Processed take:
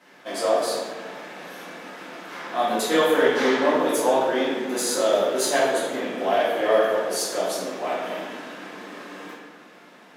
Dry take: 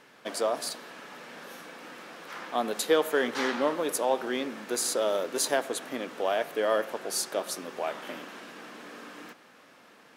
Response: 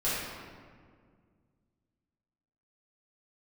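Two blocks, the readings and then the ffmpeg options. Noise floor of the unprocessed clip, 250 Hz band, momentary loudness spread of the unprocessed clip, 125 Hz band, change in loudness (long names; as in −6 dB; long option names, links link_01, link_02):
−56 dBFS, +7.5 dB, 17 LU, +8.0 dB, +6.5 dB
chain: -filter_complex "[0:a]aeval=exprs='0.282*(cos(1*acos(clip(val(0)/0.282,-1,1)))-cos(1*PI/2))+0.0178*(cos(4*acos(clip(val(0)/0.282,-1,1)))-cos(4*PI/2))+0.00282*(cos(6*acos(clip(val(0)/0.282,-1,1)))-cos(6*PI/2))+0.00398*(cos(7*acos(clip(val(0)/0.282,-1,1)))-cos(7*PI/2))':channel_layout=same,highpass=frequency=140:width=0.5412,highpass=frequency=140:width=1.3066[link_01];[1:a]atrim=start_sample=2205,asetrate=61740,aresample=44100[link_02];[link_01][link_02]afir=irnorm=-1:irlink=0"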